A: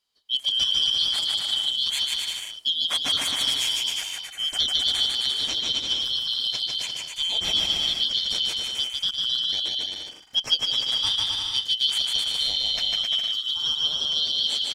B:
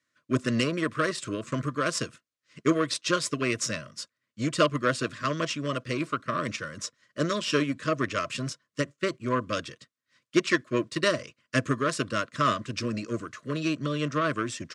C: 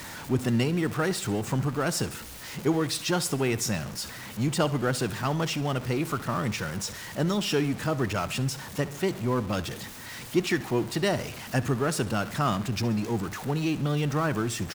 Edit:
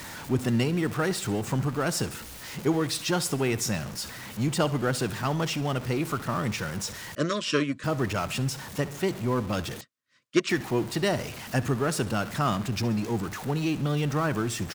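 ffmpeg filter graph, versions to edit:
-filter_complex "[1:a]asplit=2[s0][s1];[2:a]asplit=3[s2][s3][s4];[s2]atrim=end=7.152[s5];[s0]atrim=start=7.148:end=7.842[s6];[s3]atrim=start=7.838:end=9.812[s7];[s1]atrim=start=9.808:end=10.492[s8];[s4]atrim=start=10.488[s9];[s5][s6]acrossfade=d=0.004:c1=hsin:c2=hsin[s10];[s10][s7]acrossfade=d=0.004:c1=hsin:c2=hsin[s11];[s11][s8]acrossfade=d=0.004:c1=hsin:c2=hsin[s12];[s12][s9]acrossfade=d=0.004:c1=hsin:c2=hsin"

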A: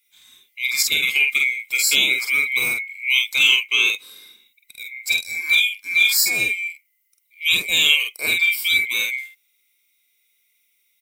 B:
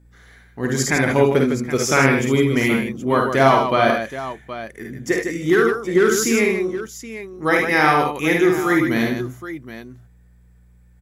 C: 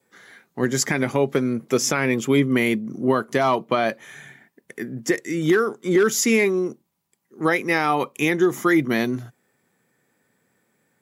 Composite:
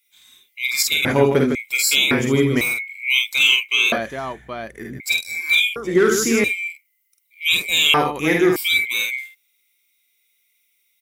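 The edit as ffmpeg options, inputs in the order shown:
-filter_complex "[1:a]asplit=5[s0][s1][s2][s3][s4];[0:a]asplit=6[s5][s6][s7][s8][s9][s10];[s5]atrim=end=1.052[s11];[s0]atrim=start=1.048:end=1.552[s12];[s6]atrim=start=1.548:end=2.112[s13];[s1]atrim=start=2.108:end=2.612[s14];[s7]atrim=start=2.608:end=3.922[s15];[s2]atrim=start=3.918:end=5.002[s16];[s8]atrim=start=4.998:end=5.762[s17];[s3]atrim=start=5.758:end=6.442[s18];[s9]atrim=start=6.438:end=7.942[s19];[s4]atrim=start=7.938:end=8.562[s20];[s10]atrim=start=8.558[s21];[s11][s12]acrossfade=d=0.004:c1=hsin:c2=hsin[s22];[s22][s13]acrossfade=d=0.004:c1=hsin:c2=hsin[s23];[s23][s14]acrossfade=d=0.004:c1=hsin:c2=hsin[s24];[s24][s15]acrossfade=d=0.004:c1=hsin:c2=hsin[s25];[s25][s16]acrossfade=d=0.004:c1=hsin:c2=hsin[s26];[s26][s17]acrossfade=d=0.004:c1=hsin:c2=hsin[s27];[s27][s18]acrossfade=d=0.004:c1=hsin:c2=hsin[s28];[s28][s19]acrossfade=d=0.004:c1=hsin:c2=hsin[s29];[s29][s20]acrossfade=d=0.004:c1=hsin:c2=hsin[s30];[s30][s21]acrossfade=d=0.004:c1=hsin:c2=hsin"

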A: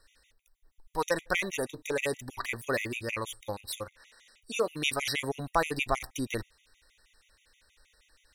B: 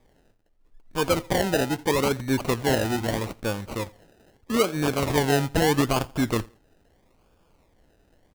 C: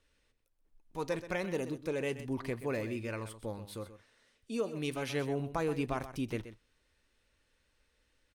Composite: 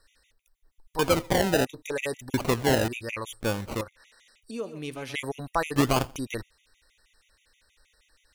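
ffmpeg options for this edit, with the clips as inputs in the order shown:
-filter_complex "[1:a]asplit=4[s0][s1][s2][s3];[0:a]asplit=6[s4][s5][s6][s7][s8][s9];[s4]atrim=end=0.992[s10];[s0]atrim=start=0.988:end=1.652[s11];[s5]atrim=start=1.648:end=2.342[s12];[s1]atrim=start=2.338:end=2.882[s13];[s6]atrim=start=2.878:end=3.412[s14];[s2]atrim=start=3.408:end=3.812[s15];[s7]atrim=start=3.808:end=4.512[s16];[2:a]atrim=start=4.508:end=5.142[s17];[s8]atrim=start=5.138:end=5.762[s18];[s3]atrim=start=5.758:end=6.162[s19];[s9]atrim=start=6.158[s20];[s10][s11]acrossfade=d=0.004:c1=hsin:c2=hsin[s21];[s21][s12]acrossfade=d=0.004:c1=hsin:c2=hsin[s22];[s22][s13]acrossfade=d=0.004:c1=hsin:c2=hsin[s23];[s23][s14]acrossfade=d=0.004:c1=hsin:c2=hsin[s24];[s24][s15]acrossfade=d=0.004:c1=hsin:c2=hsin[s25];[s25][s16]acrossfade=d=0.004:c1=hsin:c2=hsin[s26];[s26][s17]acrossfade=d=0.004:c1=hsin:c2=hsin[s27];[s27][s18]acrossfade=d=0.004:c1=hsin:c2=hsin[s28];[s28][s19]acrossfade=d=0.004:c1=hsin:c2=hsin[s29];[s29][s20]acrossfade=d=0.004:c1=hsin:c2=hsin"

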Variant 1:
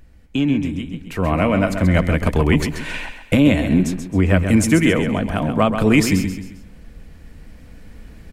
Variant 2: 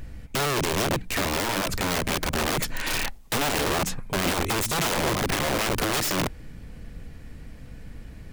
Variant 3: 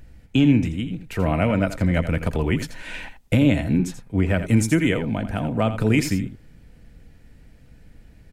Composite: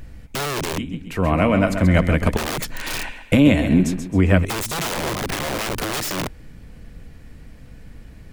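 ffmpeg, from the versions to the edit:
-filter_complex "[0:a]asplit=2[s0][s1];[1:a]asplit=3[s2][s3][s4];[s2]atrim=end=0.782[s5];[s0]atrim=start=0.778:end=2.372[s6];[s3]atrim=start=2.368:end=3.032[s7];[s1]atrim=start=3.028:end=4.452[s8];[s4]atrim=start=4.448[s9];[s5][s6]acrossfade=d=0.004:c1=hsin:c2=hsin[s10];[s10][s7]acrossfade=d=0.004:c1=hsin:c2=hsin[s11];[s11][s8]acrossfade=d=0.004:c1=hsin:c2=hsin[s12];[s12][s9]acrossfade=d=0.004:c1=hsin:c2=hsin"

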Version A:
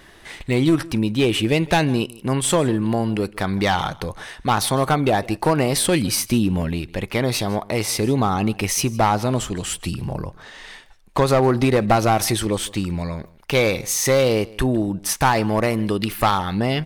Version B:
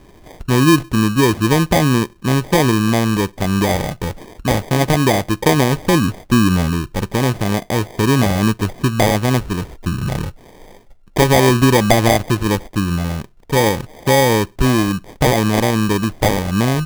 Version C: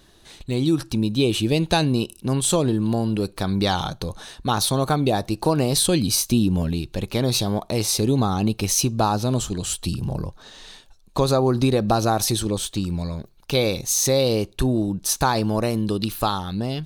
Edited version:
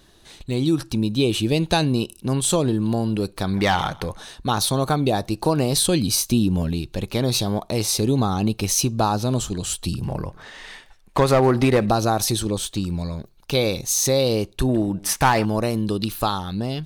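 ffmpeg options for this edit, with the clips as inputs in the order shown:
-filter_complex "[0:a]asplit=3[s0][s1][s2];[2:a]asplit=4[s3][s4][s5][s6];[s3]atrim=end=3.542[s7];[s0]atrim=start=3.538:end=4.172[s8];[s4]atrim=start=4.168:end=10.042[s9];[s1]atrim=start=10.038:end=11.892[s10];[s5]atrim=start=11.888:end=14.692[s11];[s2]atrim=start=14.688:end=15.452[s12];[s6]atrim=start=15.448[s13];[s7][s8]acrossfade=d=0.004:c1=hsin:c2=hsin[s14];[s14][s9]acrossfade=d=0.004:c1=hsin:c2=hsin[s15];[s15][s10]acrossfade=d=0.004:c1=hsin:c2=hsin[s16];[s16][s11]acrossfade=d=0.004:c1=hsin:c2=hsin[s17];[s17][s12]acrossfade=d=0.004:c1=hsin:c2=hsin[s18];[s18][s13]acrossfade=d=0.004:c1=hsin:c2=hsin"

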